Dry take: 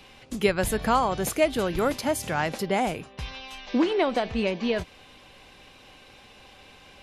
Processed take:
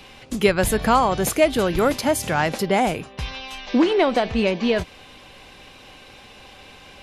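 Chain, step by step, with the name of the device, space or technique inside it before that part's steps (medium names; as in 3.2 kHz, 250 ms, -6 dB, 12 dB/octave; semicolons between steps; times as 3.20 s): parallel distortion (in parallel at -12 dB: hard clipper -22 dBFS, distortion -10 dB); on the sum: trim +4 dB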